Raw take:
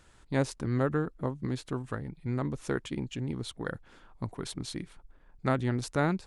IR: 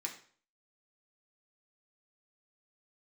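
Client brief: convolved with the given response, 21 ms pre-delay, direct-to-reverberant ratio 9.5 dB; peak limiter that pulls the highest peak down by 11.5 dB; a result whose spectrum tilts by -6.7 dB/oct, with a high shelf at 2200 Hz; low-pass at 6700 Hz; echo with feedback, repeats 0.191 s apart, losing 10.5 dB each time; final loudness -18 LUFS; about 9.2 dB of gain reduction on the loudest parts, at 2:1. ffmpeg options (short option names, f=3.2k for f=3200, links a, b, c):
-filter_complex "[0:a]lowpass=6.7k,highshelf=f=2.2k:g=-8.5,acompressor=threshold=-39dB:ratio=2,alimiter=level_in=9dB:limit=-24dB:level=0:latency=1,volume=-9dB,aecho=1:1:191|382|573:0.299|0.0896|0.0269,asplit=2[a][b];[1:a]atrim=start_sample=2205,adelay=21[c];[b][c]afir=irnorm=-1:irlink=0,volume=-9.5dB[d];[a][d]amix=inputs=2:normalize=0,volume=26.5dB"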